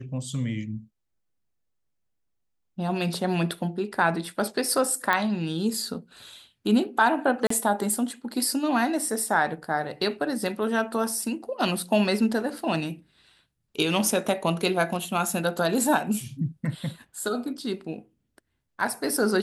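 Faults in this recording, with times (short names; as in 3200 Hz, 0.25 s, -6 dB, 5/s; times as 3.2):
5.13 pop -10 dBFS
7.47–7.5 gap 34 ms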